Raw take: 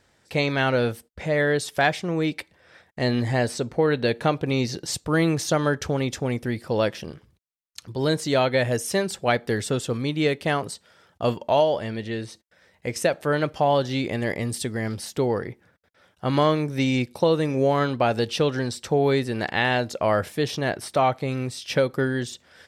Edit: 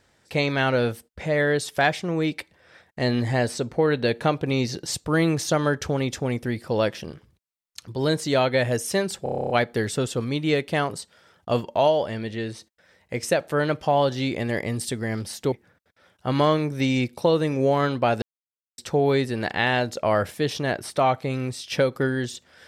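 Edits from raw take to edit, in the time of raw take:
0:09.23: stutter 0.03 s, 10 plays
0:15.25–0:15.50: remove
0:18.20–0:18.76: silence

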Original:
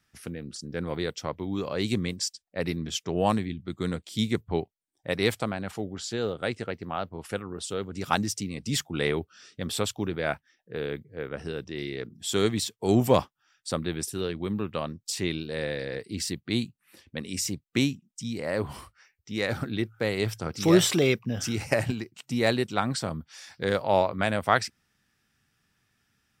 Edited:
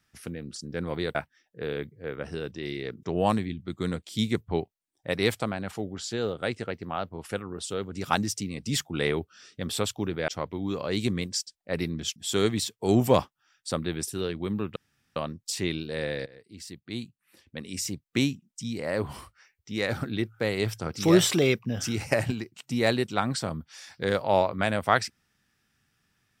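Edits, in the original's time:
0:01.15–0:03.03: swap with 0:10.28–0:12.16
0:14.76: splice in room tone 0.40 s
0:15.86–0:17.92: fade in, from −19.5 dB

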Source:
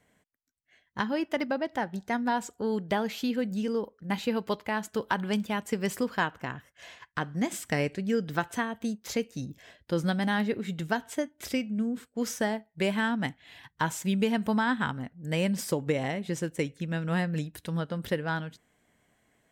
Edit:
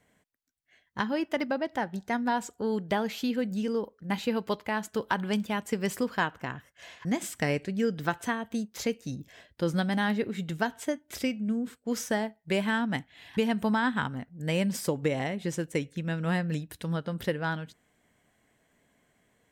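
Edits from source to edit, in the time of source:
0:07.05–0:07.35: remove
0:13.67–0:14.21: remove

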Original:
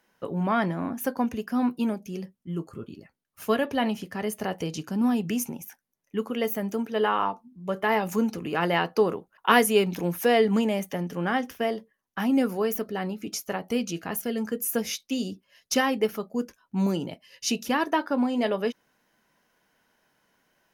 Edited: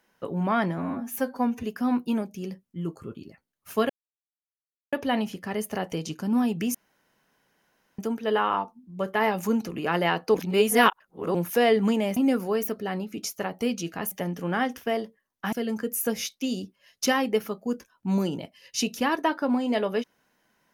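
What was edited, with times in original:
0:00.78–0:01.35: time-stretch 1.5×
0:03.61: splice in silence 1.03 s
0:05.43–0:06.67: fill with room tone
0:09.03–0:10.03: reverse
0:10.85–0:12.26: move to 0:14.21

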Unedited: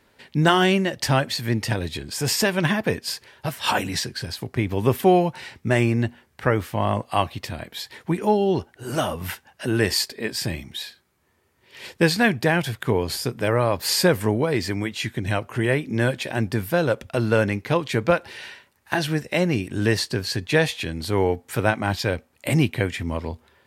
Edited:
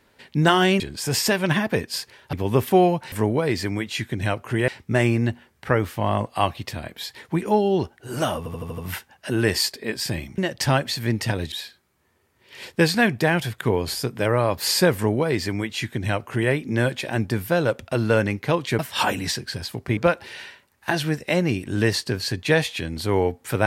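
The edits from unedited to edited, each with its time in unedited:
0:00.80–0:01.94: move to 0:10.74
0:03.47–0:04.65: move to 0:18.01
0:09.14: stutter 0.08 s, 6 plays
0:14.17–0:15.73: duplicate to 0:05.44

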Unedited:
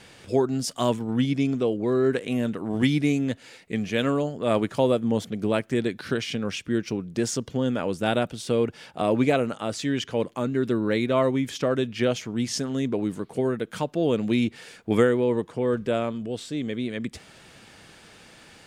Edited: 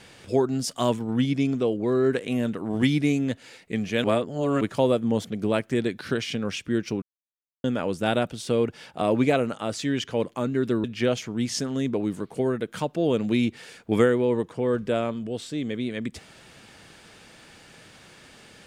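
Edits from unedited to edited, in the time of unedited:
0:04.04–0:04.61: reverse
0:07.02–0:07.64: silence
0:10.84–0:11.83: remove

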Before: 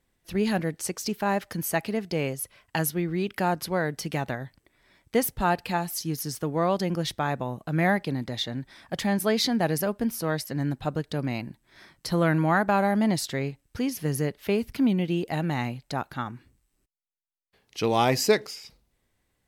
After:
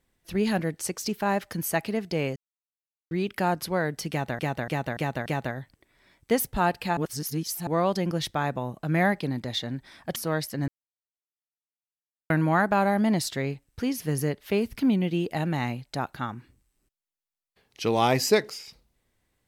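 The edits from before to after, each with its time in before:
0:02.36–0:03.11: silence
0:04.10–0:04.39: repeat, 5 plays
0:05.81–0:06.51: reverse
0:09.00–0:10.13: remove
0:10.65–0:12.27: silence

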